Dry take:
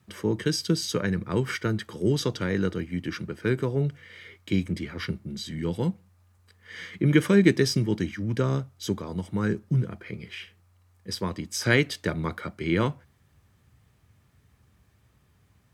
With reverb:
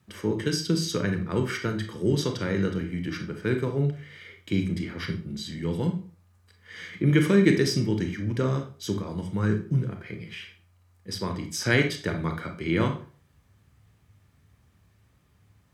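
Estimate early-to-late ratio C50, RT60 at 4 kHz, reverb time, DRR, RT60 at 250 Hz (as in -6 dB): 9.0 dB, 0.35 s, 0.40 s, 4.5 dB, 0.40 s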